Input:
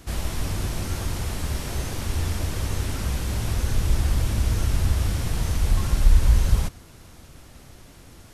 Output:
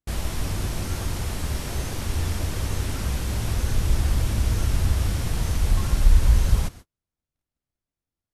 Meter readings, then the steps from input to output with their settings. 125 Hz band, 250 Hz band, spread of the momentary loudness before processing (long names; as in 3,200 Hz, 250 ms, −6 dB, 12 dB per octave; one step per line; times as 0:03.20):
0.0 dB, 0.0 dB, 8 LU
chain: noise gate −38 dBFS, range −44 dB